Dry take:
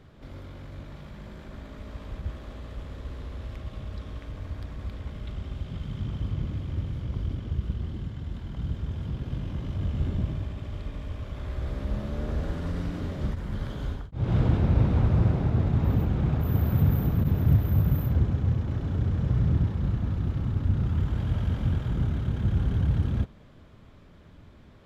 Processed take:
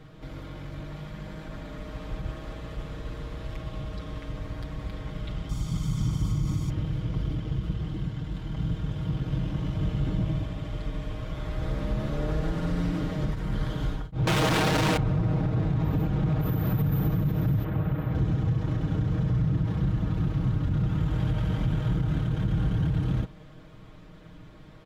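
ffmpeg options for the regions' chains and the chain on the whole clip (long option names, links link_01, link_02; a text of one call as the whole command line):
ffmpeg -i in.wav -filter_complex "[0:a]asettb=1/sr,asplit=3[link_01][link_02][link_03];[link_01]atrim=end=5.494[link_04];[link_02]atrim=start=5.49:end=6.7,asetpts=PTS-STARTPTS,afade=type=in:duration=0.004:curve=qsin,afade=type=out:start_time=1.206:duration=0.004:curve=qsin,highshelf=frequency=4500:width_type=q:width=1.5:gain=13.5,aecho=1:1:0.9:0.45,atrim=end_sample=53361[link_05];[link_03]atrim=start=6.696[link_06];[link_04][link_05]acrossfade=duration=0.004:curve1=hsin:curve2=qsin[link_07];[link_07][link_06]acrossfade=duration=0.004:curve1=qsin:curve2=hsin,asettb=1/sr,asplit=3[link_08][link_09][link_10];[link_08]atrim=end=14.274[link_11];[link_09]atrim=start=14.27:end=14.97,asetpts=PTS-STARTPTS,afade=type=in:duration=0.004:curve=qsin,afade=type=out:start_time=0.696:duration=0.004:curve=qsin,equalizer=frequency=3000:width_type=o:width=1:gain=5,asplit=2[link_12][link_13];[link_13]highpass=frequency=720:poles=1,volume=48dB,asoftclip=type=tanh:threshold=-11.5dB[link_14];[link_12][link_14]amix=inputs=2:normalize=0,lowpass=frequency=6100:poles=1,volume=-6dB[link_15];[link_10]atrim=start=14.966[link_16];[link_11][link_15]acrossfade=duration=0.004:curve1=hsin:curve2=qsin[link_17];[link_17][link_16]acrossfade=duration=0.004:curve1=qsin:curve2=hsin,asettb=1/sr,asplit=3[link_18][link_19][link_20];[link_18]atrim=end=17.644[link_21];[link_19]atrim=start=17.64:end=18.15,asetpts=PTS-STARTPTS,afade=type=in:duration=0.004:curve=qsin,afade=type=out:start_time=0.506:duration=0.004:curve=qsin,acrossover=split=3600[link_22][link_23];[link_23]acompressor=threshold=-57dB:ratio=4:attack=1:release=60[link_24];[link_22][link_24]amix=inputs=2:normalize=0,bass=frequency=250:gain=-7,treble=frequency=4000:gain=-9[link_25];[link_20]atrim=start=18.146[link_26];[link_21][link_25]acrossfade=duration=0.004:curve1=hsin:curve2=qsin[link_27];[link_27][link_26]acrossfade=duration=0.004:curve1=qsin:curve2=hsin,aecho=1:1:6.4:0.74,alimiter=limit=-20.5dB:level=0:latency=1:release=60,volume=2.5dB" out.wav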